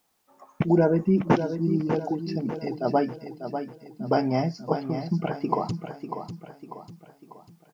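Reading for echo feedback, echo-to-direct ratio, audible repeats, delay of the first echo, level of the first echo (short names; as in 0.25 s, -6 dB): 44%, -7.5 dB, 4, 0.595 s, -8.5 dB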